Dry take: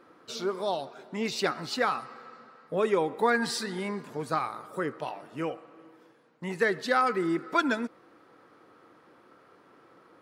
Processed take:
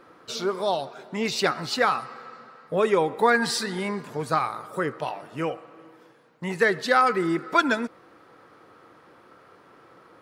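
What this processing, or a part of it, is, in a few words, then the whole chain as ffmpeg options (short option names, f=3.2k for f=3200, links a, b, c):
low shelf boost with a cut just above: -af "lowshelf=f=100:g=5.5,equalizer=f=270:t=o:w=1.1:g=-4,volume=5.5dB"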